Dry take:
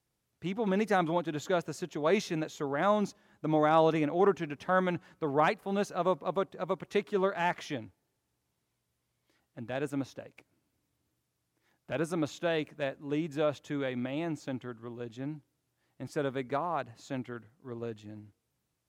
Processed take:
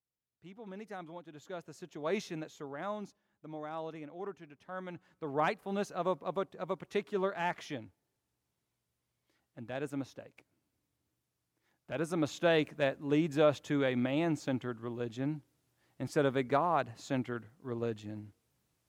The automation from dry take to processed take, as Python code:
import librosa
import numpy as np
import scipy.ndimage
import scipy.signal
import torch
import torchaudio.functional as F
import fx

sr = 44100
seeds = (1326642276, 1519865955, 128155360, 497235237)

y = fx.gain(x, sr, db=fx.line((1.26, -17.0), (2.18, -6.0), (3.49, -16.5), (4.68, -16.5), (5.45, -4.0), (11.92, -4.0), (12.48, 3.0)))